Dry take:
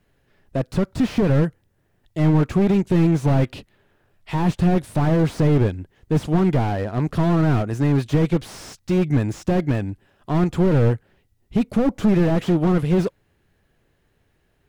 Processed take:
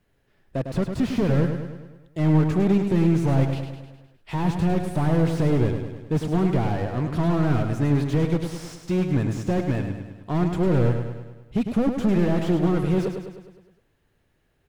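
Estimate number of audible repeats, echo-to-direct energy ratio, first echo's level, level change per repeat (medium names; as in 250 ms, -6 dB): 6, -5.5 dB, -7.0 dB, -5.0 dB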